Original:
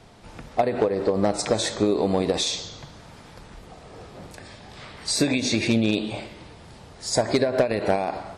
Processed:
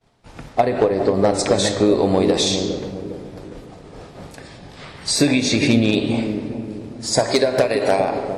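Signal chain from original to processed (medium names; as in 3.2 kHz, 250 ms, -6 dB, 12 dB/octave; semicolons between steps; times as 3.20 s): expander -39 dBFS; 7.19–8.00 s: tone controls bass -10 dB, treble +7 dB; feedback echo behind a low-pass 408 ms, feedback 44%, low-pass 490 Hz, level -5 dB; reverberation RT60 2.5 s, pre-delay 7 ms, DRR 9.5 dB; trim +4.5 dB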